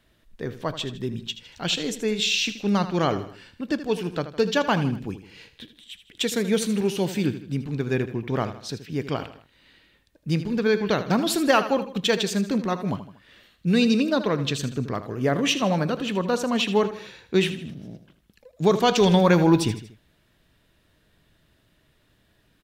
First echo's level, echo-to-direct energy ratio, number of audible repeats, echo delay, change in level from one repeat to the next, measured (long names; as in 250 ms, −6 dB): −12.5 dB, −11.5 dB, 3, 79 ms, −6.5 dB